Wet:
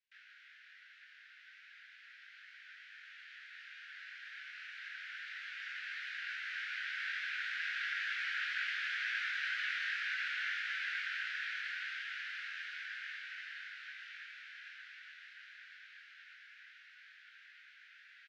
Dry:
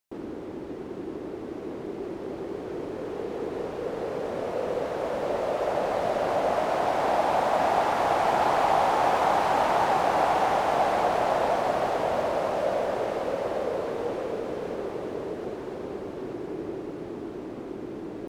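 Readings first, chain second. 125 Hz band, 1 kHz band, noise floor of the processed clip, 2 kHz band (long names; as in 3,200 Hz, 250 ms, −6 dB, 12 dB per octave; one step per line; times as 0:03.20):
below −40 dB, −29.0 dB, −60 dBFS, −0.5 dB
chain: Butterworth high-pass 1,500 Hz 96 dB per octave
high-frequency loss of the air 250 metres
double-tracking delay 21 ms −4 dB
level +1 dB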